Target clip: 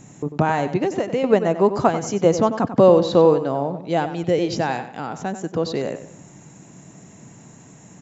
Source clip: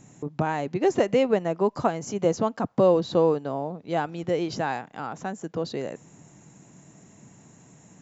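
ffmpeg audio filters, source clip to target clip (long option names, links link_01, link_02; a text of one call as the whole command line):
ffmpeg -i in.wav -filter_complex "[0:a]asettb=1/sr,asplit=3[link_01][link_02][link_03];[link_01]atrim=end=0.794[link_04];[link_02]atrim=start=0.79:end=1.24,asetpts=PTS-STARTPTS,afade=type=in:duration=0.004:curve=qsin,afade=type=out:start_time=0.446:duration=0.004:curve=qsin,acompressor=threshold=-26dB:ratio=5[link_05];[link_03]atrim=start=1.236[link_06];[link_04][link_05]acrossfade=duration=0.004:curve1=hsin:curve2=qsin[link_07];[link_07][link_06]acrossfade=duration=0.004:curve1=qsin:curve2=hsin,asettb=1/sr,asplit=3[link_08][link_09][link_10];[link_08]atrim=end=3.824[link_11];[link_09]atrim=start=3.82:end=5.38,asetpts=PTS-STARTPTS,afade=type=in:duration=0.004:curve=qsin,afade=type=out:start_time=1.556:duration=0.004:curve=qsin,equalizer=frequency=1200:width_type=o:width=0.97:gain=-5.5[link_12];[link_10]atrim=start=5.376[link_13];[link_11][link_12]acrossfade=duration=0.004:curve1=hsin:curve2=qsin[link_14];[link_14][link_13]acrossfade=duration=0.004:curve1=qsin:curve2=hsin,asplit=2[link_15][link_16];[link_16]adelay=94,lowpass=frequency=4700:poles=1,volume=-11dB,asplit=2[link_17][link_18];[link_18]adelay=94,lowpass=frequency=4700:poles=1,volume=0.35,asplit=2[link_19][link_20];[link_20]adelay=94,lowpass=frequency=4700:poles=1,volume=0.35,asplit=2[link_21][link_22];[link_22]adelay=94,lowpass=frequency=4700:poles=1,volume=0.35[link_23];[link_17][link_19][link_21][link_23]amix=inputs=4:normalize=0[link_24];[link_15][link_24]amix=inputs=2:normalize=0,volume=6.5dB" out.wav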